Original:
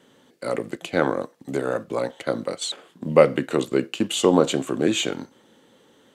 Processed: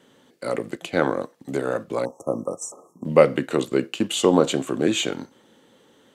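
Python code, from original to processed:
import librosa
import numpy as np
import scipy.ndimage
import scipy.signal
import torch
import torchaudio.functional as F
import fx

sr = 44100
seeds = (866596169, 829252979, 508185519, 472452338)

y = fx.brickwall_bandstop(x, sr, low_hz=1300.0, high_hz=5300.0, at=(2.05, 3.05))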